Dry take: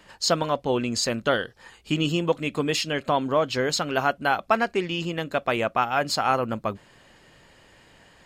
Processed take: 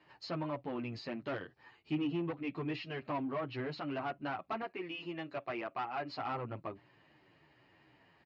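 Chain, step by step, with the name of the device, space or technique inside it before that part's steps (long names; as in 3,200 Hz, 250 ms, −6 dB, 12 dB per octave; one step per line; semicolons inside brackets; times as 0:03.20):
treble cut that deepens with the level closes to 2,500 Hz, closed at −19.5 dBFS
0:04.62–0:06.18: bass and treble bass −10 dB, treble +2 dB
barber-pole flanger into a guitar amplifier (barber-pole flanger 9.2 ms −2.7 Hz; soft clipping −23.5 dBFS, distortion −11 dB; loudspeaker in its box 110–4,000 Hz, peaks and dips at 130 Hz +5 dB, 210 Hz −7 dB, 310 Hz +5 dB, 510 Hz −7 dB, 1,500 Hz −5 dB, 3,400 Hz −9 dB)
level −6.5 dB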